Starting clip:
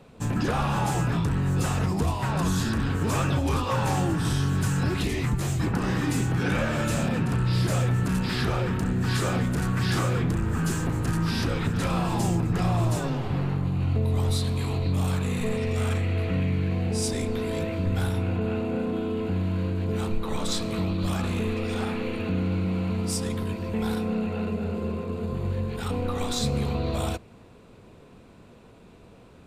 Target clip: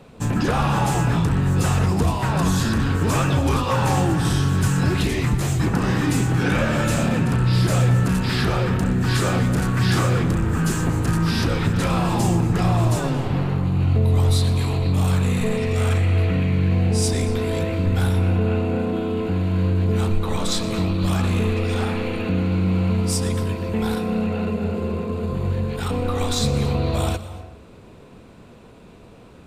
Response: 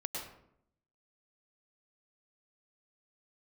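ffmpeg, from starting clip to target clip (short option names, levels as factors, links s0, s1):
-filter_complex "[0:a]asplit=2[s0][s1];[1:a]atrim=start_sample=2205,adelay=121[s2];[s1][s2]afir=irnorm=-1:irlink=0,volume=0.2[s3];[s0][s3]amix=inputs=2:normalize=0,volume=1.78"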